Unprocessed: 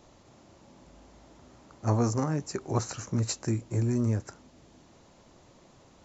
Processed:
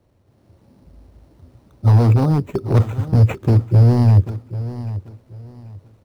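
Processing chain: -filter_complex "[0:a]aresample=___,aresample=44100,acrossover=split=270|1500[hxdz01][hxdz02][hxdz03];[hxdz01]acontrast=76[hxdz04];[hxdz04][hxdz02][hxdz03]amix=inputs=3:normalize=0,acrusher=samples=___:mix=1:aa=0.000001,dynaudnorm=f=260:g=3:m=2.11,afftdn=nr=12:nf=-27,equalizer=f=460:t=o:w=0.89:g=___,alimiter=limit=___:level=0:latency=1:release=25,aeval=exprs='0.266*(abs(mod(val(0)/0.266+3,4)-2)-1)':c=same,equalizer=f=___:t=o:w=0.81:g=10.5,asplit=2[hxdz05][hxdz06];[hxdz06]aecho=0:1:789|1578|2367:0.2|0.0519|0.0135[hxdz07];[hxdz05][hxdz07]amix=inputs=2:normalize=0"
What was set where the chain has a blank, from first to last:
16000, 9, 6.5, 0.398, 94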